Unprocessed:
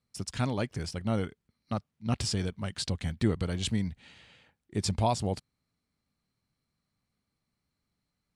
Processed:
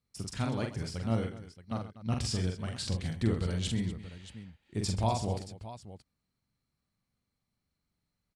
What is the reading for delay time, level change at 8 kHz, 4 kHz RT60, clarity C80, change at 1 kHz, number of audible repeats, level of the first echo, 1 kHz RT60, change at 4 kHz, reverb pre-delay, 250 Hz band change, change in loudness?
44 ms, −2.5 dB, no reverb audible, no reverb audible, −2.5 dB, 4, −4.0 dB, no reverb audible, −2.5 dB, no reverb audible, −2.0 dB, −1.5 dB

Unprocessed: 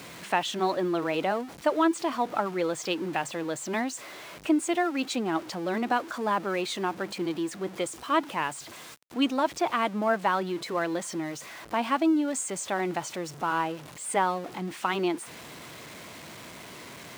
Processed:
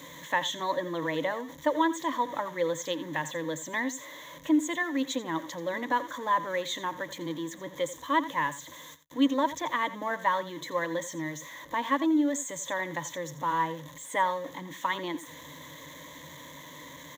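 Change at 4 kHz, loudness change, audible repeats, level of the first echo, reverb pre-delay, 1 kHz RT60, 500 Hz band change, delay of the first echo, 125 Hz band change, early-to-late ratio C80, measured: −1.5 dB, −1.5 dB, 1, −15.0 dB, no reverb audible, no reverb audible, −3.0 dB, 85 ms, −3.0 dB, no reverb audible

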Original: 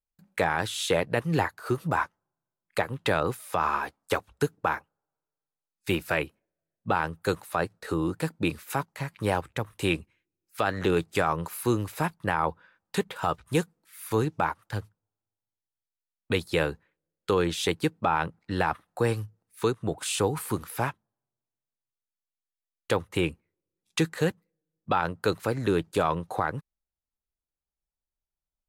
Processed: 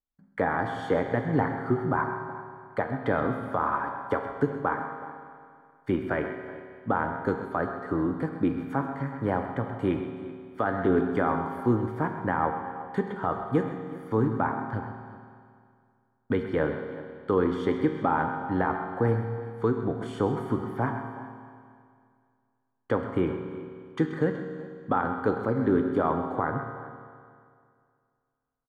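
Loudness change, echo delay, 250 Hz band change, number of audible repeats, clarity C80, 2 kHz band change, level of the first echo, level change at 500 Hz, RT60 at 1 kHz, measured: 0.0 dB, 130 ms, +3.5 dB, 2, 5.5 dB, −2.5 dB, −11.5 dB, +0.5 dB, 2.2 s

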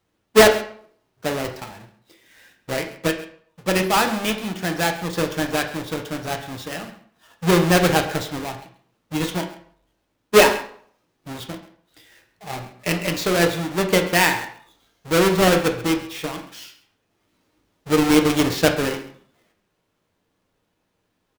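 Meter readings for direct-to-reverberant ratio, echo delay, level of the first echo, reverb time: 3.5 dB, 134 ms, −17.0 dB, 0.55 s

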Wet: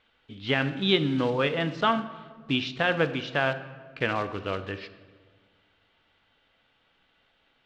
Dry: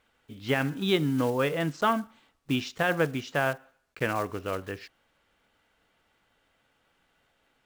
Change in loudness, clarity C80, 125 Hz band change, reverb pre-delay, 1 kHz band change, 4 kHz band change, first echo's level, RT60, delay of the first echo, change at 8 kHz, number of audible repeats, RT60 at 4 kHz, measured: +1.5 dB, 15.0 dB, +0.5 dB, 4 ms, +1.0 dB, +6.0 dB, no echo audible, 1.6 s, no echo audible, can't be measured, no echo audible, 0.95 s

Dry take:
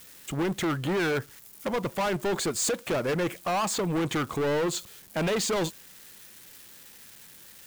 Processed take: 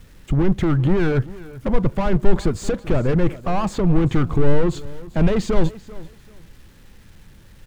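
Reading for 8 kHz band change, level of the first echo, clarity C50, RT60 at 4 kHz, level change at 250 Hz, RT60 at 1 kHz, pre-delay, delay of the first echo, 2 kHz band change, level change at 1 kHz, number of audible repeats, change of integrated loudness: −9.0 dB, −18.5 dB, no reverb audible, no reverb audible, +10.0 dB, no reverb audible, no reverb audible, 388 ms, 0.0 dB, +2.5 dB, 2, +7.0 dB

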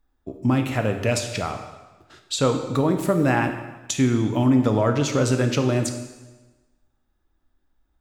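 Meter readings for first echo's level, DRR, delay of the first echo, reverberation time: no echo audible, 5.5 dB, no echo audible, 1.2 s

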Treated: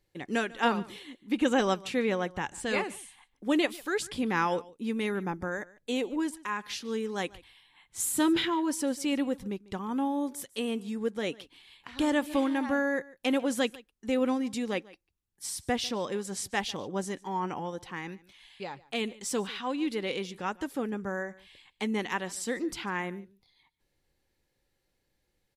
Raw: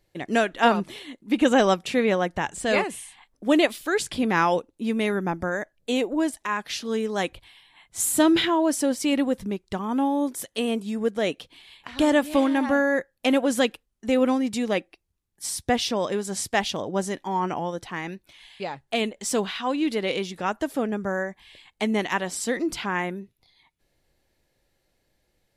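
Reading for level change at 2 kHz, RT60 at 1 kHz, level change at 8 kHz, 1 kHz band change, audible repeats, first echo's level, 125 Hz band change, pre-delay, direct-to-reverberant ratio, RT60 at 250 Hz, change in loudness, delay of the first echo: −6.0 dB, no reverb audible, −6.0 dB, −7.0 dB, 1, −21.5 dB, −6.0 dB, no reverb audible, no reverb audible, no reverb audible, −6.5 dB, 146 ms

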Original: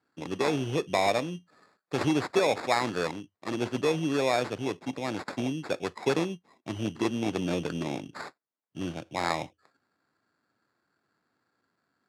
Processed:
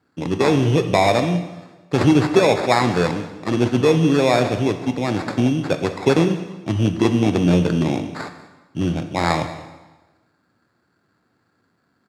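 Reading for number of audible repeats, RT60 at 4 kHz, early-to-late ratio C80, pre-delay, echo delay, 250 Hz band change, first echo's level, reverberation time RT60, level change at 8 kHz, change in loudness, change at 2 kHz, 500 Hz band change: 1, 1.1 s, 11.0 dB, 5 ms, 191 ms, +12.5 dB, −18.5 dB, 1.2 s, +7.5 dB, +11.0 dB, +8.0 dB, +10.0 dB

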